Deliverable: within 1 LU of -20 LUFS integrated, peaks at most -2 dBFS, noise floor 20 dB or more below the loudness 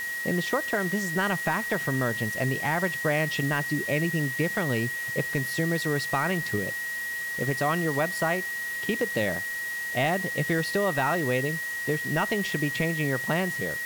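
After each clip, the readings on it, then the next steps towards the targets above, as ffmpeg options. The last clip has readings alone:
steady tone 1900 Hz; tone level -30 dBFS; noise floor -33 dBFS; noise floor target -47 dBFS; loudness -27.0 LUFS; peak -14.0 dBFS; loudness target -20.0 LUFS
-> -af "bandreject=f=1.9k:w=30"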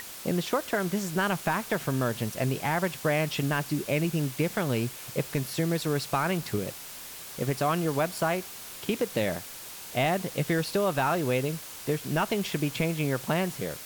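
steady tone none; noise floor -42 dBFS; noise floor target -49 dBFS
-> -af "afftdn=nr=7:nf=-42"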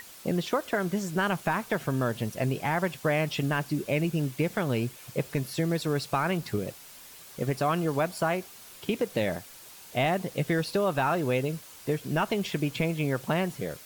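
noise floor -49 dBFS; loudness -29.0 LUFS; peak -15.5 dBFS; loudness target -20.0 LUFS
-> -af "volume=9dB"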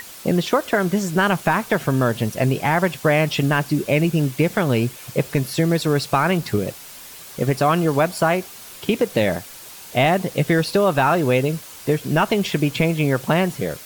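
loudness -20.0 LUFS; peak -6.5 dBFS; noise floor -40 dBFS

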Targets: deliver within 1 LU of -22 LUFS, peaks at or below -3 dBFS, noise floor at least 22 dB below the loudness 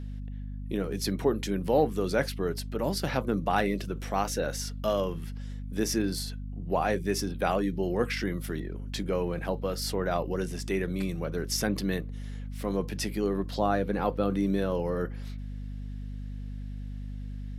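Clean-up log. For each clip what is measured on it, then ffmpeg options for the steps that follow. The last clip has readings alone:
hum 50 Hz; harmonics up to 250 Hz; hum level -34 dBFS; loudness -31.0 LUFS; peak -12.0 dBFS; loudness target -22.0 LUFS
-> -af "bandreject=f=50:t=h:w=6,bandreject=f=100:t=h:w=6,bandreject=f=150:t=h:w=6,bandreject=f=200:t=h:w=6,bandreject=f=250:t=h:w=6"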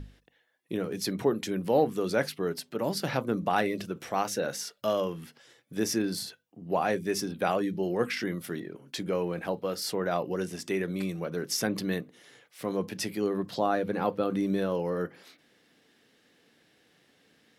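hum none; loudness -30.5 LUFS; peak -12.5 dBFS; loudness target -22.0 LUFS
-> -af "volume=8.5dB"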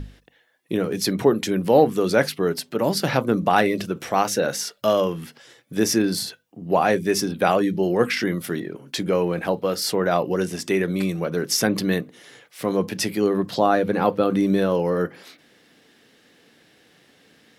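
loudness -22.0 LUFS; peak -4.0 dBFS; noise floor -59 dBFS

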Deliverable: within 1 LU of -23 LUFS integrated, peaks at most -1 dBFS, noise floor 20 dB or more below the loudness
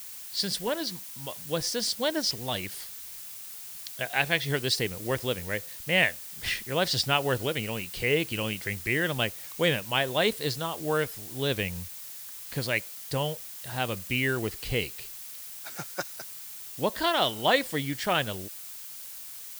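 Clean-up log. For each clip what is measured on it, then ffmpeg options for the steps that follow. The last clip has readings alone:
noise floor -42 dBFS; noise floor target -49 dBFS; loudness -29.0 LUFS; peak -9.0 dBFS; loudness target -23.0 LUFS
-> -af "afftdn=nr=7:nf=-42"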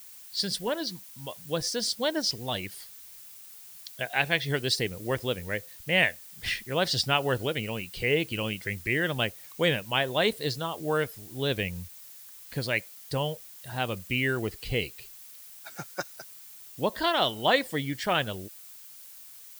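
noise floor -48 dBFS; noise floor target -49 dBFS
-> -af "afftdn=nr=6:nf=-48"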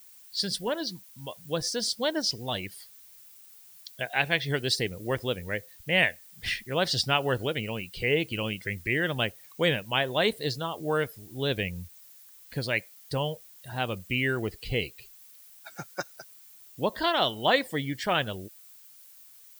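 noise floor -53 dBFS; loudness -29.0 LUFS; peak -9.0 dBFS; loudness target -23.0 LUFS
-> -af "volume=6dB"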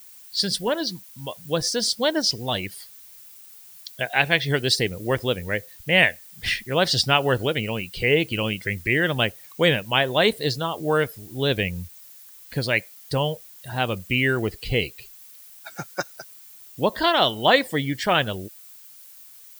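loudness -23.0 LUFS; peak -3.0 dBFS; noise floor -47 dBFS

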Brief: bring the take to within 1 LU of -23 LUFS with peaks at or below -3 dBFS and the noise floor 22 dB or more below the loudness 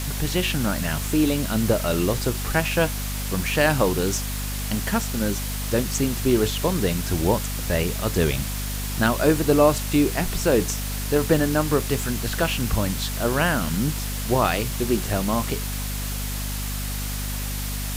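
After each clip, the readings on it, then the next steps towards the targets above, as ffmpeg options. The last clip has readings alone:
hum 50 Hz; harmonics up to 250 Hz; hum level -27 dBFS; noise floor -28 dBFS; noise floor target -46 dBFS; loudness -23.5 LUFS; peak -4.5 dBFS; loudness target -23.0 LUFS
-> -af "bandreject=f=50:t=h:w=4,bandreject=f=100:t=h:w=4,bandreject=f=150:t=h:w=4,bandreject=f=200:t=h:w=4,bandreject=f=250:t=h:w=4"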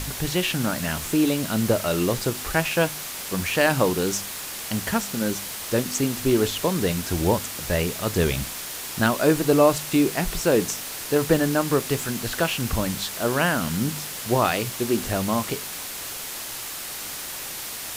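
hum none; noise floor -34 dBFS; noise floor target -46 dBFS
-> -af "afftdn=nr=12:nf=-34"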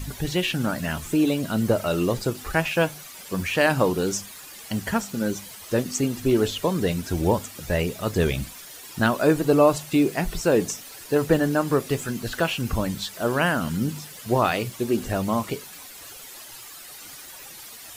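noise floor -42 dBFS; noise floor target -46 dBFS
-> -af "afftdn=nr=6:nf=-42"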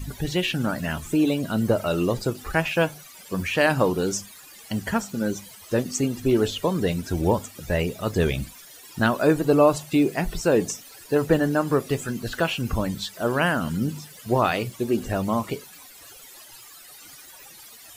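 noise floor -46 dBFS; loudness -24.0 LUFS; peak -5.5 dBFS; loudness target -23.0 LUFS
-> -af "volume=1dB"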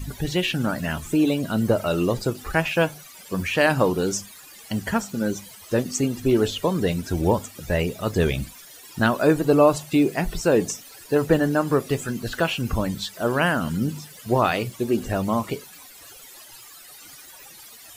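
loudness -23.0 LUFS; peak -4.5 dBFS; noise floor -45 dBFS

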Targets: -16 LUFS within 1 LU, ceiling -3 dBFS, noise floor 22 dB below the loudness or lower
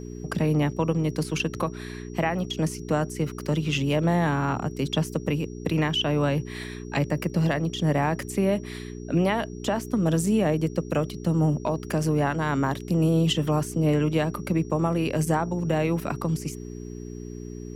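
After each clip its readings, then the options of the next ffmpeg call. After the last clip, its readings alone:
hum 60 Hz; harmonics up to 420 Hz; hum level -35 dBFS; steady tone 5700 Hz; tone level -54 dBFS; loudness -25.5 LUFS; peak -11.5 dBFS; loudness target -16.0 LUFS
-> -af "bandreject=f=60:t=h:w=4,bandreject=f=120:t=h:w=4,bandreject=f=180:t=h:w=4,bandreject=f=240:t=h:w=4,bandreject=f=300:t=h:w=4,bandreject=f=360:t=h:w=4,bandreject=f=420:t=h:w=4"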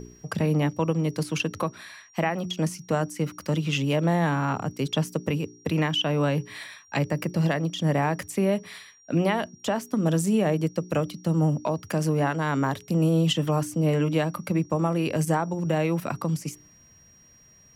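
hum none; steady tone 5700 Hz; tone level -54 dBFS
-> -af "bandreject=f=5.7k:w=30"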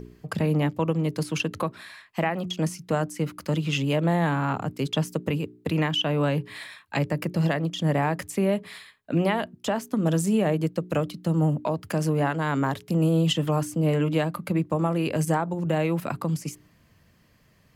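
steady tone none; loudness -26.0 LUFS; peak -12.0 dBFS; loudness target -16.0 LUFS
-> -af "volume=10dB,alimiter=limit=-3dB:level=0:latency=1"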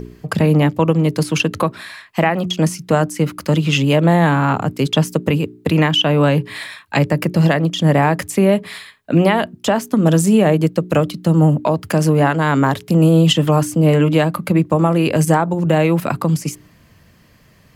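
loudness -16.0 LUFS; peak -3.0 dBFS; noise floor -51 dBFS

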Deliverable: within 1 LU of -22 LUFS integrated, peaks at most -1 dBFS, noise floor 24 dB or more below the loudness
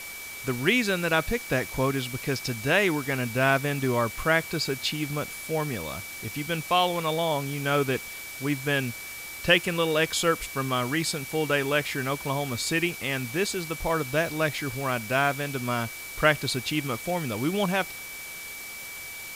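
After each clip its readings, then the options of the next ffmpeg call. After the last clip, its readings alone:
steady tone 2300 Hz; tone level -39 dBFS; noise floor -39 dBFS; noise floor target -51 dBFS; loudness -27.0 LUFS; peak -6.5 dBFS; loudness target -22.0 LUFS
-> -af "bandreject=f=2.3k:w=30"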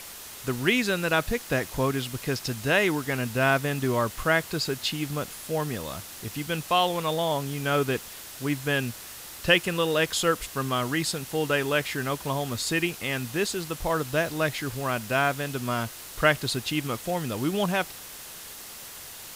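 steady tone none; noise floor -42 dBFS; noise floor target -51 dBFS
-> -af "afftdn=nr=9:nf=-42"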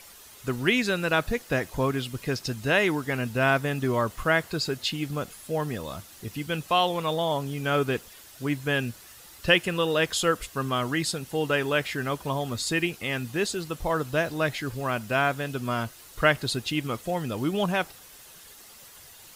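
noise floor -49 dBFS; noise floor target -51 dBFS
-> -af "afftdn=nr=6:nf=-49"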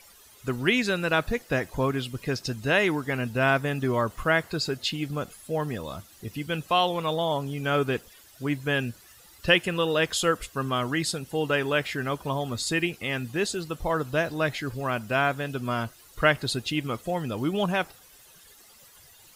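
noise floor -54 dBFS; loudness -27.0 LUFS; peak -6.5 dBFS; loudness target -22.0 LUFS
-> -af "volume=5dB"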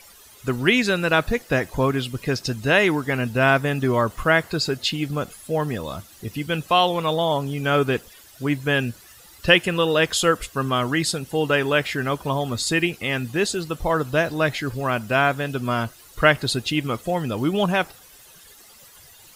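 loudness -22.0 LUFS; peak -1.5 dBFS; noise floor -49 dBFS

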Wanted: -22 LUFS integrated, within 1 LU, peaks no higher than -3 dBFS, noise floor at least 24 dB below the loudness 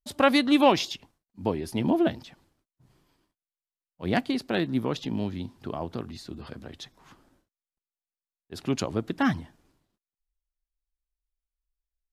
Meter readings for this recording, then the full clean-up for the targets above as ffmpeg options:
loudness -27.0 LUFS; peak -7.0 dBFS; loudness target -22.0 LUFS
-> -af "volume=5dB,alimiter=limit=-3dB:level=0:latency=1"

